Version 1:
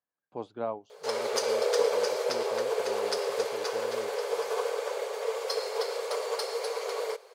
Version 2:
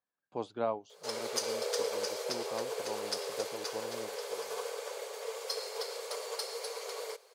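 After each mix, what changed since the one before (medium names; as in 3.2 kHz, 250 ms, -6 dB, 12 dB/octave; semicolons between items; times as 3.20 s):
background -9.0 dB; master: add treble shelf 3.2 kHz +10 dB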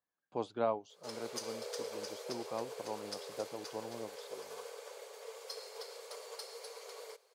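background -8.5 dB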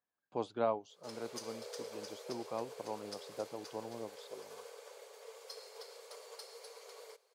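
background -4.0 dB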